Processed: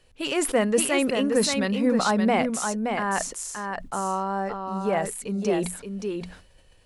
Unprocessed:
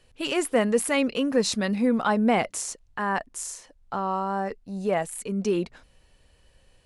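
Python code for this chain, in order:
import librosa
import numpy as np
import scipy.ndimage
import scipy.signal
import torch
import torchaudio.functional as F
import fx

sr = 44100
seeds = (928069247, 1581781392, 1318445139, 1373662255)

p1 = fx.hum_notches(x, sr, base_hz=60, count=4)
p2 = p1 + fx.echo_single(p1, sr, ms=573, db=-5.5, dry=0)
y = fx.sustainer(p2, sr, db_per_s=91.0)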